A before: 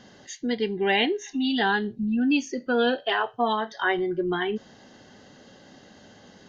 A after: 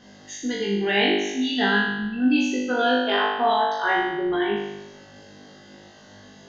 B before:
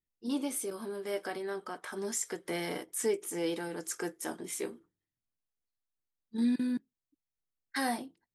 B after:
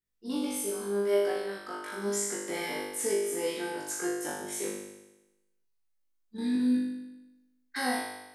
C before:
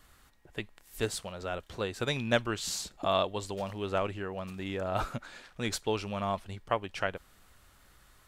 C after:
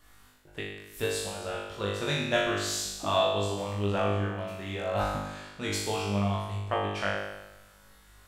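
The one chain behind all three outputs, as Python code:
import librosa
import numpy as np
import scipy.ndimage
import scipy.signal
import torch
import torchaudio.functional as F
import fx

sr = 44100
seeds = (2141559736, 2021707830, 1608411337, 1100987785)

y = fx.room_flutter(x, sr, wall_m=3.4, rt60_s=1.0)
y = y * librosa.db_to_amplitude(-2.5)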